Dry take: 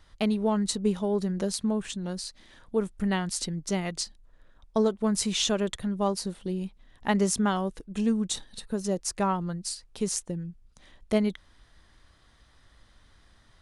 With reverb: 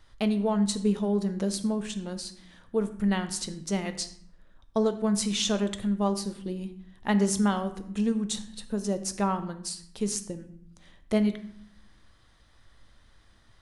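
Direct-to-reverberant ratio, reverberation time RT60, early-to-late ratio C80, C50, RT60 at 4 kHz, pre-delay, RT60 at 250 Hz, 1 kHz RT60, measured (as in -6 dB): 9.0 dB, 0.65 s, 15.0 dB, 12.5 dB, 0.45 s, 9 ms, 0.95 s, 0.70 s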